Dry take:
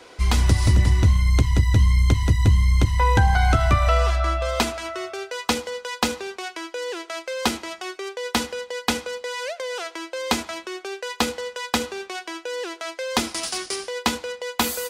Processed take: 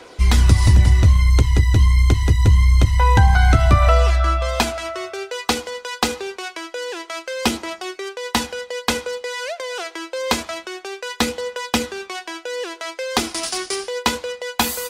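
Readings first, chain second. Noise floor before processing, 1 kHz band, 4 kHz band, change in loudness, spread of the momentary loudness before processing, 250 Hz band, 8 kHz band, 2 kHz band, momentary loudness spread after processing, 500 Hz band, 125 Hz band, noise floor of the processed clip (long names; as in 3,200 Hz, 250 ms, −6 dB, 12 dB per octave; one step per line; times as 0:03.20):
−47 dBFS, +2.5 dB, +3.0 dB, +4.0 dB, 13 LU, +2.5 dB, +3.0 dB, +3.0 dB, 15 LU, +3.0 dB, +4.0 dB, −44 dBFS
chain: phase shifter 0.26 Hz, delay 3 ms, feedback 29%
level +2.5 dB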